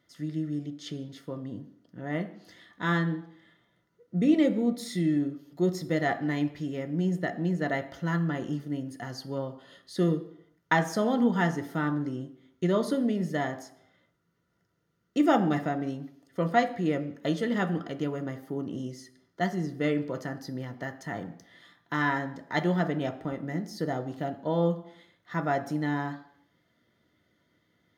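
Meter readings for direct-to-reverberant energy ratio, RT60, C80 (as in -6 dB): 6.5 dB, 0.70 s, 16.0 dB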